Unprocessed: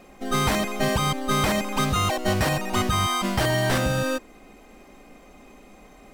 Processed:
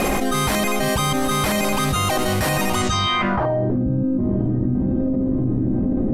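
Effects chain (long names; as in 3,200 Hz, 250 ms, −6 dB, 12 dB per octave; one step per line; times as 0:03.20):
feedback delay with all-pass diffusion 915 ms, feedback 42%, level −13 dB
low-pass filter sweep 12,000 Hz → 280 Hz, 0:02.74–0:03.77
envelope flattener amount 100%
level −1.5 dB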